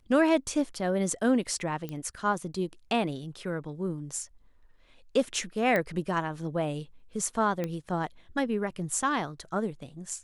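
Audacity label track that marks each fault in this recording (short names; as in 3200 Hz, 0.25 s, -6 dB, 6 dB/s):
1.890000	1.890000	pop -23 dBFS
5.760000	5.760000	pop -15 dBFS
7.640000	7.640000	pop -18 dBFS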